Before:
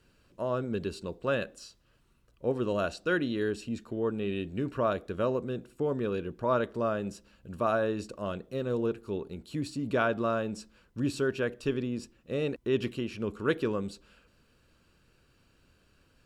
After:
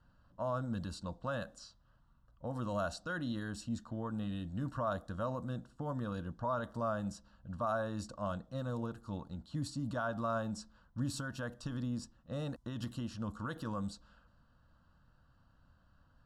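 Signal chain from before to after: low-pass opened by the level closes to 2600 Hz, open at -27.5 dBFS; limiter -24 dBFS, peak gain reduction 10 dB; fixed phaser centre 970 Hz, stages 4; gain +1 dB

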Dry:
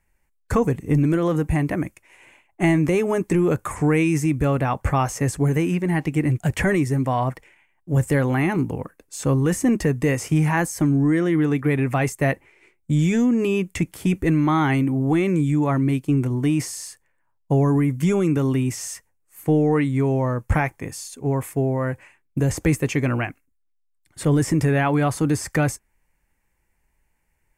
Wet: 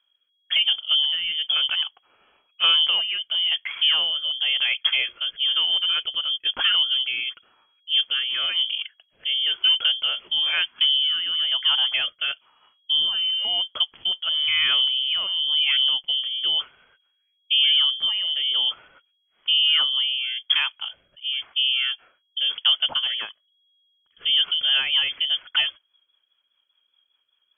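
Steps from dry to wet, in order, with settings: air absorption 190 m; inverted band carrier 3300 Hz; rotary speaker horn 1 Hz, later 5 Hz, at 24.03

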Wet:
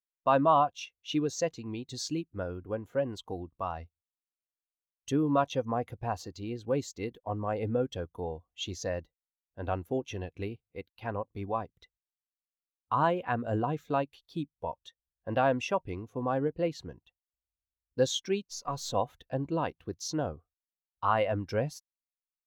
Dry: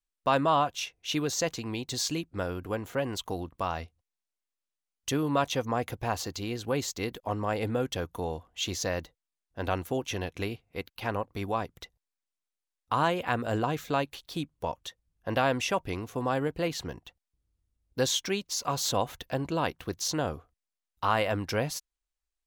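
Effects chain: 18.44–18.95 half-wave gain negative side -3 dB; spectral expander 1.5:1

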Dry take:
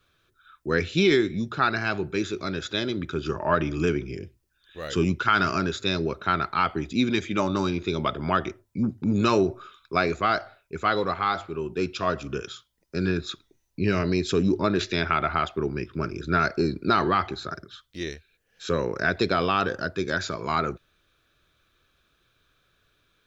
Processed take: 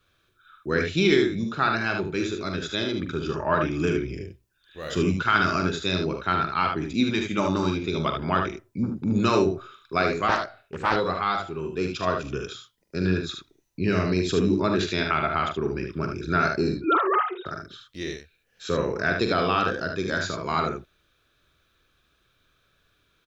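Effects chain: 16.79–17.46 sine-wave speech; early reflections 44 ms -8.5 dB, 75 ms -5.5 dB; 10.28–10.96 Doppler distortion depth 0.55 ms; gain -1 dB

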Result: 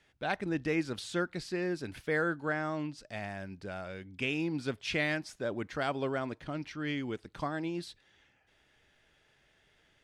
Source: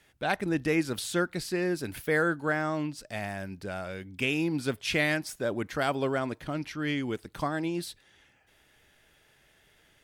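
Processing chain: LPF 6400 Hz 12 dB/oct; gain -4.5 dB

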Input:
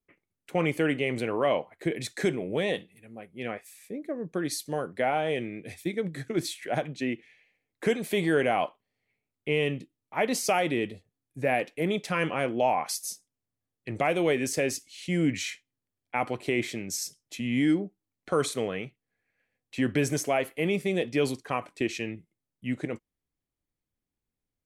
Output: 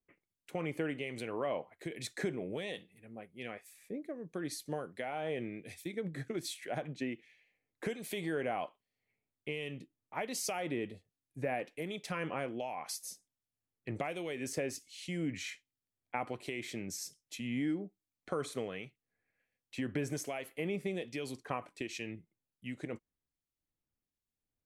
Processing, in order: compressor 4:1, threshold -28 dBFS, peak gain reduction 8 dB; harmonic tremolo 1.3 Hz, depth 50%, crossover 2200 Hz; gain -3.5 dB

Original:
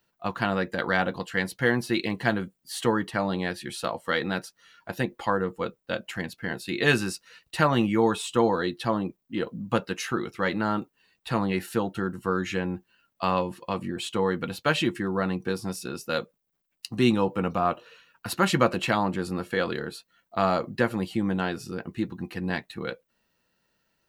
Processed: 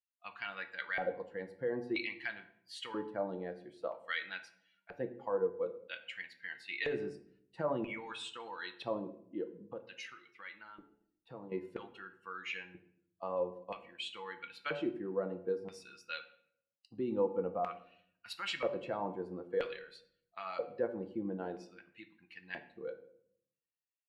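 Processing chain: per-bin expansion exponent 1.5; LPF 11000 Hz; de-hum 144.1 Hz, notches 7; limiter -20 dBFS, peak gain reduction 11.5 dB; 9.41–11.52 compressor 5:1, threshold -39 dBFS, peak gain reduction 11.5 dB; LFO band-pass square 0.51 Hz 500–2400 Hz; shoebox room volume 120 m³, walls mixed, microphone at 0.31 m; gain +2.5 dB

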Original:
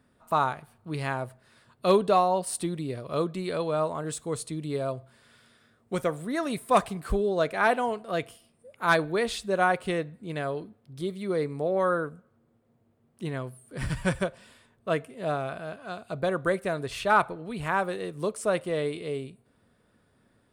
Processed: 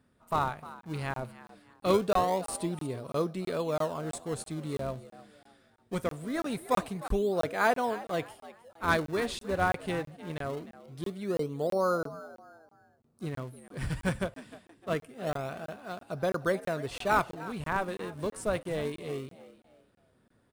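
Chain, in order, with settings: spectral gain 11.3–13.27, 1500–3700 Hz -19 dB; in parallel at -10.5 dB: decimation with a swept rate 39×, swing 160% 0.23 Hz; on the sum: frequency-shifting echo 0.305 s, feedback 33%, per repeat +78 Hz, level -17 dB; crackling interface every 0.33 s, samples 1024, zero, from 0.81; gain -4.5 dB

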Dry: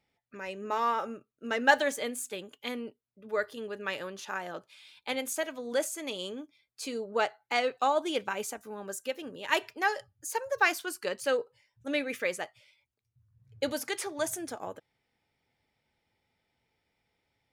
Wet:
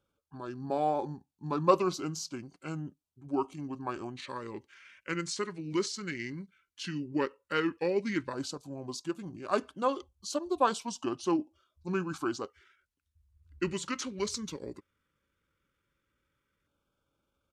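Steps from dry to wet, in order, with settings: pitch shift -7.5 st; LFO notch square 0.12 Hz 710–1900 Hz

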